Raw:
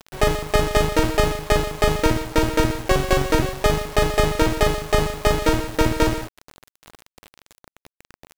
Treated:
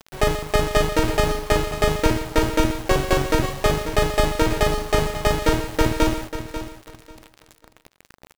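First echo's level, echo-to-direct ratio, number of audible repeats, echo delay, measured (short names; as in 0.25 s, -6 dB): -11.0 dB, -11.0 dB, 2, 0.541 s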